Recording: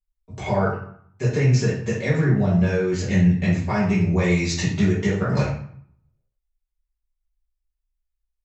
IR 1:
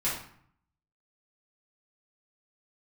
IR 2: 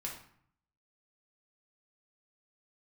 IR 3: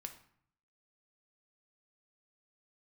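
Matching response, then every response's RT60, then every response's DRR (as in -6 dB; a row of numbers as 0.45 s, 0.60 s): 1; 0.60 s, 0.60 s, 0.60 s; -9.5 dB, -2.5 dB, 5.5 dB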